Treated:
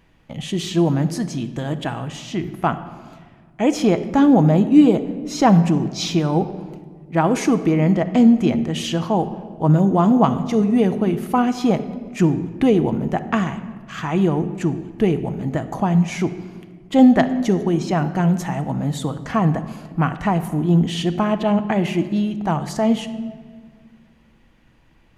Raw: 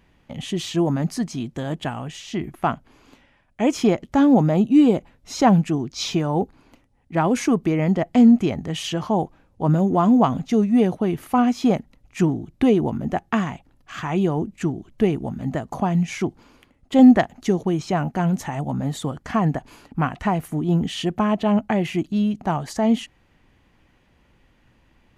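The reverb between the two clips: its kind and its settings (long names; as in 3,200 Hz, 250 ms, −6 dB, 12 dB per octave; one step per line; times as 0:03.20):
rectangular room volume 2,100 cubic metres, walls mixed, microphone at 0.63 metres
level +1.5 dB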